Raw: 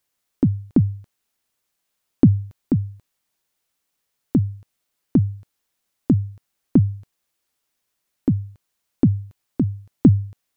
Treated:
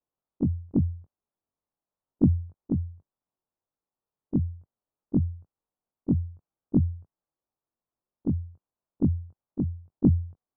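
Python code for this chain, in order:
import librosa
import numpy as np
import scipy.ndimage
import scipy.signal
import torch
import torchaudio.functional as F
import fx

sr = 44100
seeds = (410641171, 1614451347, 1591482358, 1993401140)

y = fx.frame_reverse(x, sr, frame_ms=43.0)
y = scipy.signal.sosfilt(scipy.signal.butter(4, 1100.0, 'lowpass', fs=sr, output='sos'), y)
y = F.gain(torch.from_numpy(y), -4.0).numpy()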